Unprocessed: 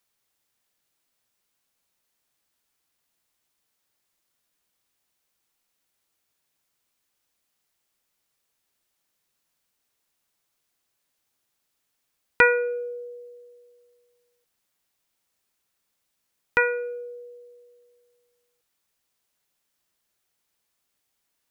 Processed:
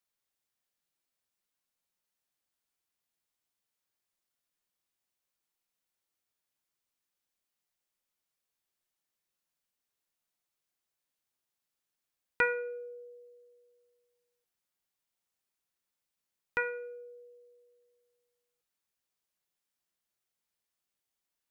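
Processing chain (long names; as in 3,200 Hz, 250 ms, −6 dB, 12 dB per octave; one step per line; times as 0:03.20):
tuned comb filter 180 Hz, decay 0.51 s, harmonics all, mix 60%
level −4 dB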